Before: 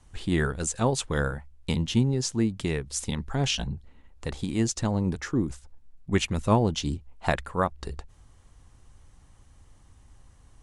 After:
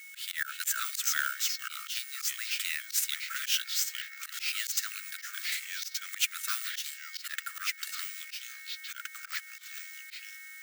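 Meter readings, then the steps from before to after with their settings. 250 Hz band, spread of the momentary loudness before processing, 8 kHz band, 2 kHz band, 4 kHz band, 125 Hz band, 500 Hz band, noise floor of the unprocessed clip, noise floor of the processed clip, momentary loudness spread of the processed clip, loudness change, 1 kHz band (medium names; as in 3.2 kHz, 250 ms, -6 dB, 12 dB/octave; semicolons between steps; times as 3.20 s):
under -40 dB, 11 LU, +2.5 dB, +2.0 dB, +2.0 dB, under -40 dB, under -40 dB, -56 dBFS, -49 dBFS, 11 LU, -5.0 dB, -10.0 dB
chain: CVSD coder 64 kbps; whistle 2.2 kHz -54 dBFS; ever faster or slower copies 272 ms, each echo -3 st, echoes 3, each echo -6 dB; careless resampling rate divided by 2×, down none, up hold; steep high-pass 1.3 kHz 96 dB/octave; in parallel at 0 dB: compression 8:1, threshold -44 dBFS, peak gain reduction 18.5 dB; on the sum: treble shelf 5.1 kHz +9.5 dB; slow attack 112 ms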